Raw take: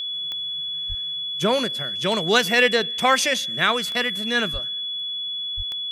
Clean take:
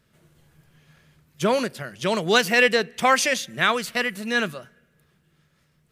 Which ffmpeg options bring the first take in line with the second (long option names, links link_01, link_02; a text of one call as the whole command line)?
ffmpeg -i in.wav -filter_complex "[0:a]adeclick=threshold=4,bandreject=frequency=3400:width=30,asplit=3[link_01][link_02][link_03];[link_01]afade=type=out:start_time=0.88:duration=0.02[link_04];[link_02]highpass=frequency=140:width=0.5412,highpass=frequency=140:width=1.3066,afade=type=in:start_time=0.88:duration=0.02,afade=type=out:start_time=1:duration=0.02[link_05];[link_03]afade=type=in:start_time=1:duration=0.02[link_06];[link_04][link_05][link_06]amix=inputs=3:normalize=0,asplit=3[link_07][link_08][link_09];[link_07]afade=type=out:start_time=4.52:duration=0.02[link_10];[link_08]highpass=frequency=140:width=0.5412,highpass=frequency=140:width=1.3066,afade=type=in:start_time=4.52:duration=0.02,afade=type=out:start_time=4.64:duration=0.02[link_11];[link_09]afade=type=in:start_time=4.64:duration=0.02[link_12];[link_10][link_11][link_12]amix=inputs=3:normalize=0,asplit=3[link_13][link_14][link_15];[link_13]afade=type=out:start_time=5.56:duration=0.02[link_16];[link_14]highpass=frequency=140:width=0.5412,highpass=frequency=140:width=1.3066,afade=type=in:start_time=5.56:duration=0.02,afade=type=out:start_time=5.68:duration=0.02[link_17];[link_15]afade=type=in:start_time=5.68:duration=0.02[link_18];[link_16][link_17][link_18]amix=inputs=3:normalize=0" out.wav